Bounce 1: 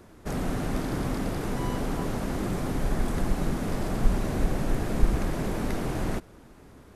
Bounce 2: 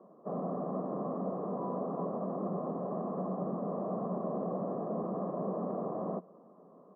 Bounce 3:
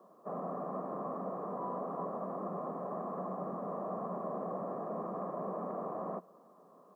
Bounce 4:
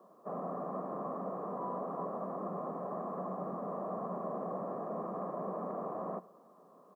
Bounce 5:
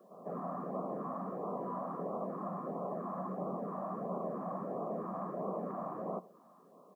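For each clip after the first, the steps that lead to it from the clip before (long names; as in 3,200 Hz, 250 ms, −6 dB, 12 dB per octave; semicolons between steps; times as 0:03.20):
Chebyshev band-pass filter 180–1,100 Hz, order 4; comb filter 1.7 ms, depth 57%; level −2 dB
tilt shelving filter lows −10 dB, about 1,100 Hz; level +2.5 dB
single-tap delay 84 ms −21 dB
echo ahead of the sound 149 ms −15 dB; auto-filter notch sine 1.5 Hz 400–1,800 Hz; level +1.5 dB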